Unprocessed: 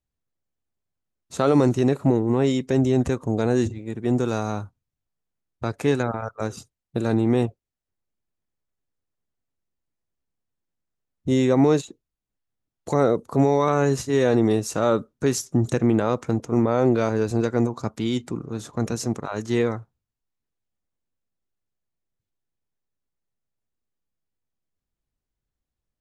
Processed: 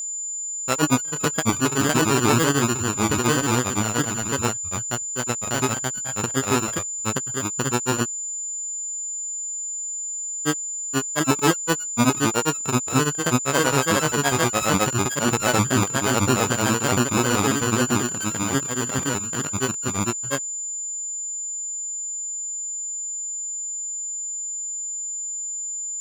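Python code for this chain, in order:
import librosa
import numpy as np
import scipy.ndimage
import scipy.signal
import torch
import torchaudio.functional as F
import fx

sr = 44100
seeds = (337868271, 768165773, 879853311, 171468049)

y = np.r_[np.sort(x[:len(x) // 32 * 32].reshape(-1, 32), axis=1).ravel(), x[len(x) // 32 * 32:]]
y = fx.granulator(y, sr, seeds[0], grain_ms=100.0, per_s=27.0, spray_ms=961.0, spread_st=3)
y = y + 10.0 ** (-30.0 / 20.0) * np.sin(2.0 * np.pi * 7100.0 * np.arange(len(y)) / sr)
y = y * 10.0 ** (3.0 / 20.0)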